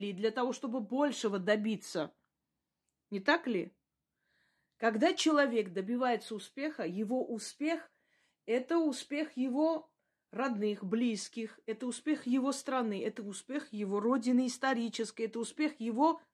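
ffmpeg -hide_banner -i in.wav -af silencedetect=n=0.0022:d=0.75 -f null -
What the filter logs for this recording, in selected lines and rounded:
silence_start: 2.10
silence_end: 3.12 | silence_duration: 1.02
silence_start: 3.69
silence_end: 4.80 | silence_duration: 1.12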